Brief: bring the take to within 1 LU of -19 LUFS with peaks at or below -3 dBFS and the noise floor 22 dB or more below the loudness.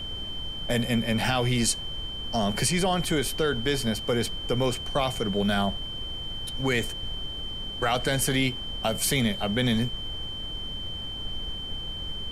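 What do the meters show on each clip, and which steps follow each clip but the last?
steady tone 3.1 kHz; tone level -34 dBFS; noise floor -35 dBFS; noise floor target -50 dBFS; loudness -27.5 LUFS; peak level -12.0 dBFS; loudness target -19.0 LUFS
-> band-stop 3.1 kHz, Q 30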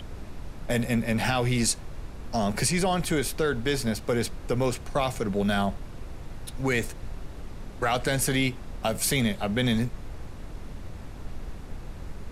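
steady tone not found; noise floor -41 dBFS; noise floor target -49 dBFS
-> noise print and reduce 8 dB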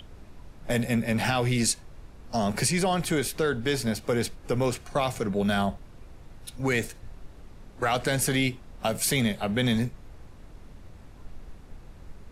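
noise floor -49 dBFS; loudness -27.0 LUFS; peak level -12.5 dBFS; loudness target -19.0 LUFS
-> trim +8 dB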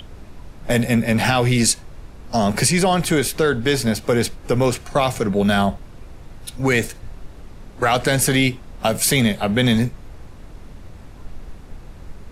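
loudness -19.0 LUFS; peak level -4.5 dBFS; noise floor -41 dBFS

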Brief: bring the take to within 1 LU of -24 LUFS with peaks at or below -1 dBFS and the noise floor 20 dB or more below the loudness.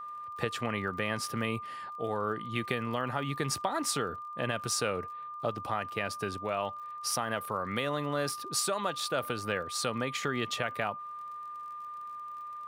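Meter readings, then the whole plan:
tick rate 34 per s; steady tone 1.2 kHz; tone level -39 dBFS; loudness -33.5 LUFS; peak level -14.5 dBFS; loudness target -24.0 LUFS
-> de-click; band-stop 1.2 kHz, Q 30; trim +9.5 dB

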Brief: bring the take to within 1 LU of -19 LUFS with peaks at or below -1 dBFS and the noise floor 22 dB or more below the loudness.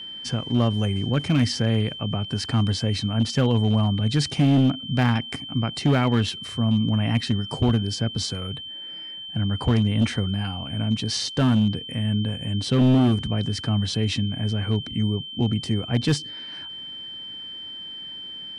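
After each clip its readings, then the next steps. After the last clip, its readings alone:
clipped samples 1.2%; clipping level -13.5 dBFS; steady tone 3.1 kHz; tone level -34 dBFS; loudness -24.0 LUFS; peak level -13.5 dBFS; loudness target -19.0 LUFS
-> clip repair -13.5 dBFS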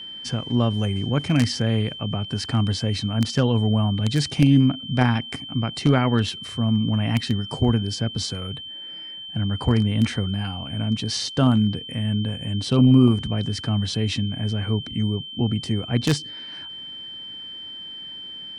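clipped samples 0.0%; steady tone 3.1 kHz; tone level -34 dBFS
-> band-stop 3.1 kHz, Q 30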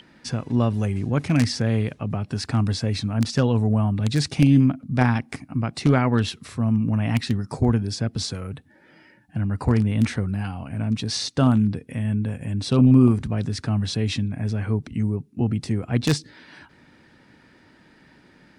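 steady tone not found; loudness -23.0 LUFS; peak level -4.0 dBFS; loudness target -19.0 LUFS
-> trim +4 dB; peak limiter -1 dBFS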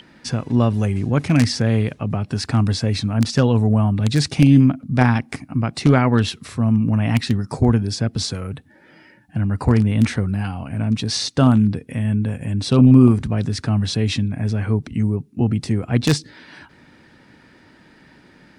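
loudness -19.0 LUFS; peak level -1.0 dBFS; noise floor -51 dBFS

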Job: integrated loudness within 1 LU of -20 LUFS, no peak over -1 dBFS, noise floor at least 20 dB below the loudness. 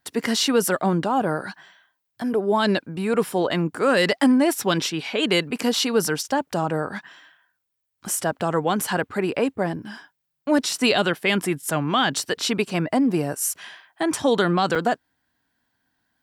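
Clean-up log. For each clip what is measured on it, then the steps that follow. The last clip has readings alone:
dropouts 1; longest dropout 4.6 ms; loudness -22.5 LUFS; peak level -6.0 dBFS; loudness target -20.0 LUFS
-> interpolate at 14.75 s, 4.6 ms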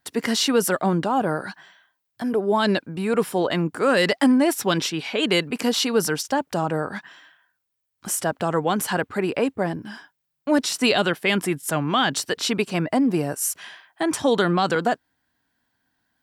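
dropouts 0; loudness -22.5 LUFS; peak level -6.0 dBFS; loudness target -20.0 LUFS
-> trim +2.5 dB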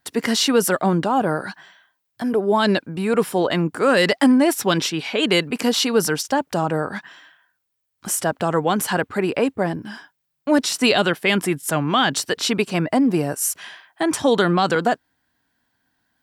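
loudness -20.0 LUFS; peak level -3.5 dBFS; noise floor -75 dBFS

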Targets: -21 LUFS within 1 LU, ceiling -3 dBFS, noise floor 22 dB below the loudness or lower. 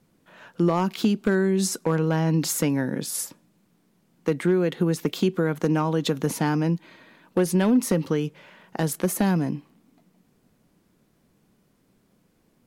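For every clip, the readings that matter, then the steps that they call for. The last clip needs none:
clipped samples 0.3%; clipping level -13.0 dBFS; loudness -24.5 LUFS; peak level -13.0 dBFS; loudness target -21.0 LUFS
-> clip repair -13 dBFS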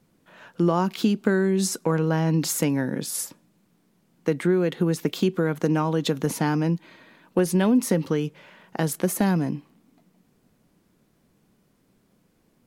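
clipped samples 0.0%; loudness -24.0 LUFS; peak level -7.5 dBFS; loudness target -21.0 LUFS
-> trim +3 dB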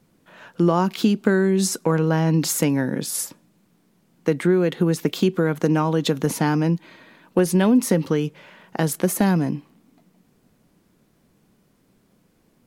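loudness -21.0 LUFS; peak level -4.5 dBFS; noise floor -62 dBFS

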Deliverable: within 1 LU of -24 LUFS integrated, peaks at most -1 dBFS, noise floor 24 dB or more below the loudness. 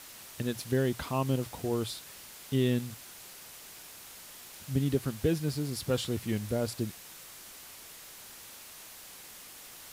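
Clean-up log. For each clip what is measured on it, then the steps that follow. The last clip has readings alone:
noise floor -49 dBFS; noise floor target -56 dBFS; loudness -32.0 LUFS; peak level -15.0 dBFS; loudness target -24.0 LUFS
-> noise reduction 7 dB, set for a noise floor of -49 dBFS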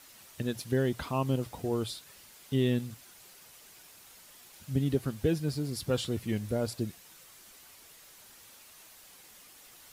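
noise floor -55 dBFS; noise floor target -57 dBFS
-> noise reduction 6 dB, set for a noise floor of -55 dBFS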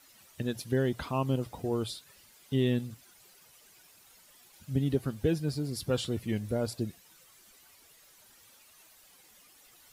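noise floor -60 dBFS; loudness -32.5 LUFS; peak level -15.5 dBFS; loudness target -24.0 LUFS
-> trim +8.5 dB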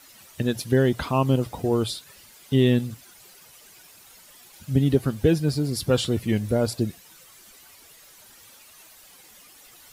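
loudness -24.0 LUFS; peak level -7.0 dBFS; noise floor -51 dBFS

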